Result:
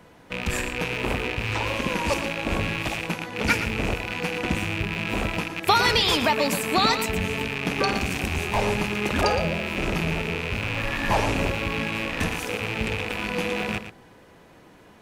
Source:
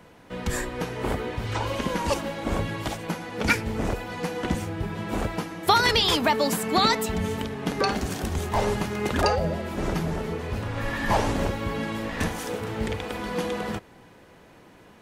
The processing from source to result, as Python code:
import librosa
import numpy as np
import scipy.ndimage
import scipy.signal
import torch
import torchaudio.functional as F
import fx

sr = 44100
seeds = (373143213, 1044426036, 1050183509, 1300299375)

p1 = fx.rattle_buzz(x, sr, strikes_db=-38.0, level_db=-17.0)
y = p1 + fx.echo_single(p1, sr, ms=116, db=-10.5, dry=0)